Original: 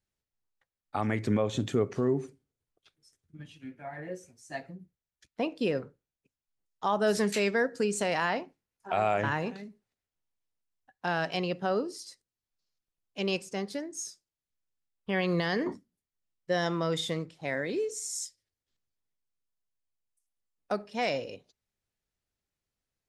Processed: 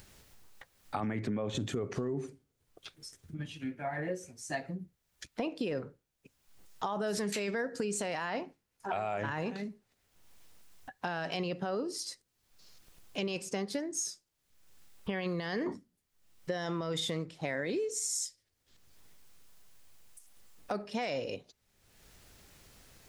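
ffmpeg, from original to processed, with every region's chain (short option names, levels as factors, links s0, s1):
-filter_complex "[0:a]asettb=1/sr,asplit=3[s0][s1][s2];[s0]atrim=end=1.004[s3];[s1]atrim=start=1:end=1.55,asetpts=PTS-STARTPTS,afade=t=in:d=0.004:c=qsin,afade=t=out:st=0.546:d=0.004:c=qsin,highpass=150,bass=f=250:g=6,treble=f=4000:g=-9[s4];[s2]atrim=start=1.546[s5];[s3][s4]acrossfade=d=0.004:c1=hsin:c2=qsin[s6];[s6][s5]acrossfade=d=0.004:c1=qsin:c2=hsin,acompressor=mode=upward:threshold=0.00631:ratio=2.5,alimiter=level_in=1.06:limit=0.0631:level=0:latency=1:release=13,volume=0.944,acompressor=threshold=0.0141:ratio=6,volume=2"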